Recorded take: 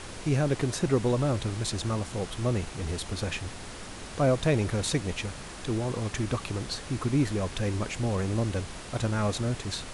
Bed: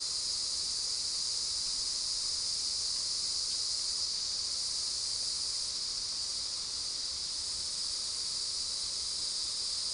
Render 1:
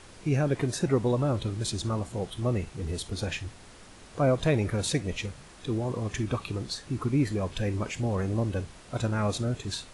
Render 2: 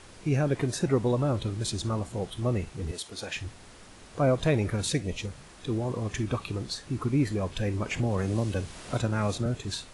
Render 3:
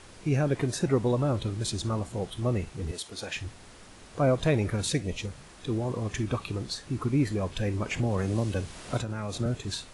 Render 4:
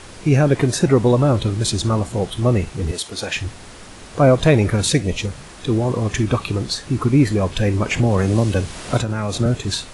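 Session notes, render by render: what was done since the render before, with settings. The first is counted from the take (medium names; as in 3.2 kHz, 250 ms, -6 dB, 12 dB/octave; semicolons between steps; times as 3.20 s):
noise print and reduce 9 dB
2.91–3.36 s: high-pass 570 Hz 6 dB/octave; 4.75–5.30 s: peaking EQ 460 Hz -> 2.7 kHz -6.5 dB 0.8 oct; 7.91–9.46 s: three bands compressed up and down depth 70%
8.99–9.39 s: compression, threshold -29 dBFS
trim +11 dB; peak limiter -3 dBFS, peak gain reduction 1.5 dB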